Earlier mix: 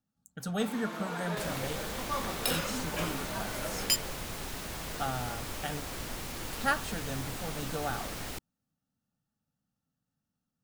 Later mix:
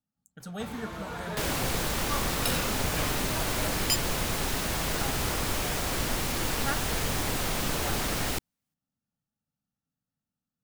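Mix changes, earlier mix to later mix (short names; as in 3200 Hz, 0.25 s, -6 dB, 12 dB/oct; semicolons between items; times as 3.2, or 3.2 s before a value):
speech -5.0 dB; first sound: remove steep high-pass 170 Hz 48 dB/oct; second sound +9.5 dB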